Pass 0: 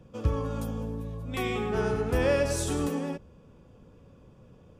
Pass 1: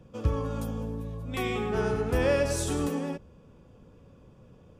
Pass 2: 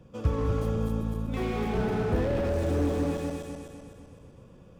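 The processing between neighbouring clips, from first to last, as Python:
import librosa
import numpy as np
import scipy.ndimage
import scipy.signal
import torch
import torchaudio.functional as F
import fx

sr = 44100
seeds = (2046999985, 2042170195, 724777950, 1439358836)

y1 = x
y2 = fx.reverse_delay_fb(y1, sr, ms=127, feedback_pct=68, wet_db=-3.5)
y2 = fx.slew_limit(y2, sr, full_power_hz=24.0)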